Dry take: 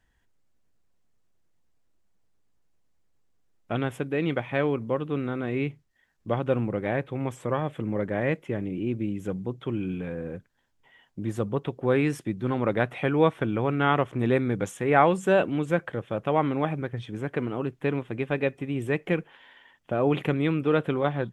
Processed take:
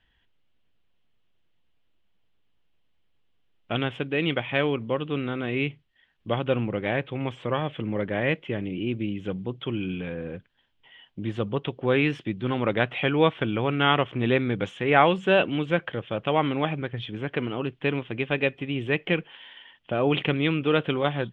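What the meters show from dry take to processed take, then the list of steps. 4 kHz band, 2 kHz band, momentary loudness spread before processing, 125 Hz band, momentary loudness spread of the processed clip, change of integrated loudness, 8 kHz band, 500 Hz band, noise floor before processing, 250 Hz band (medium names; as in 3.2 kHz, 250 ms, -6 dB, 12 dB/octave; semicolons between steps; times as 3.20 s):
+10.5 dB, +4.5 dB, 9 LU, 0.0 dB, 10 LU, +1.0 dB, under -10 dB, 0.0 dB, -69 dBFS, 0.0 dB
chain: resonant low-pass 3.1 kHz, resonance Q 4.3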